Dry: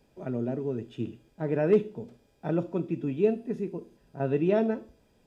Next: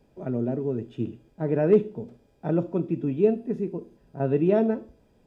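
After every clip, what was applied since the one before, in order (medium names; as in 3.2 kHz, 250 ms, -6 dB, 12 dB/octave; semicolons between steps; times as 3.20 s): tilt shelf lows +4 dB, about 1.4 kHz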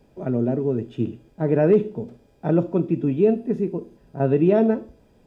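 loudness maximiser +12 dB; trim -7 dB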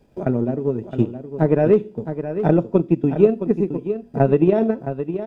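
transient shaper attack +9 dB, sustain -4 dB; delay 666 ms -10 dB; trim -1 dB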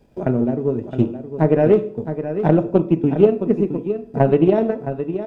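on a send at -11.5 dB: reverberation RT60 0.55 s, pre-delay 14 ms; on the sum: loudspeaker Doppler distortion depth 0.16 ms; trim +1 dB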